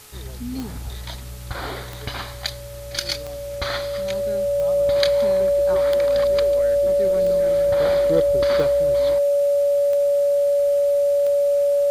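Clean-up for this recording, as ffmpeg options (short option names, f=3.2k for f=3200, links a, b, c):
-af "adeclick=t=4,bandreject=f=426.5:t=h:w=4,bandreject=f=853:t=h:w=4,bandreject=f=1.2795k:t=h:w=4,bandreject=f=570:w=30,afwtdn=0.0063"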